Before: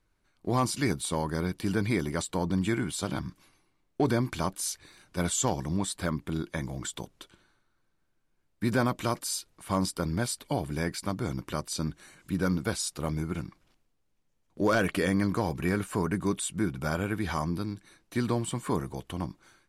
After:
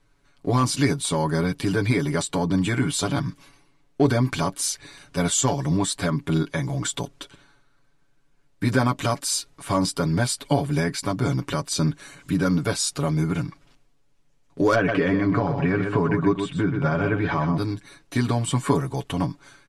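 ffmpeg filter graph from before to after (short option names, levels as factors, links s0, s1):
-filter_complex "[0:a]asettb=1/sr,asplit=3[s0][s1][s2];[s0]atrim=end=14.754[s3];[s1]atrim=start=14.75:end=17.58,asetpts=PTS-STARTPTS,afade=t=in:d=0.004:c=qsin,afade=t=out:st=2.826:d=0.004:c=qsin,lowpass=2500,aecho=1:1:126:0.422,atrim=end_sample=124803[s4];[s2]atrim=start=17.576[s5];[s3][s4]acrossfade=d=0.004:c1=hsin:c2=qsin[s6];[s6][s5]acrossfade=d=0.004:c1=qsin:c2=hsin,alimiter=limit=0.0891:level=0:latency=1:release=240,lowpass=10000,aecho=1:1:7.1:0.82,volume=2.37"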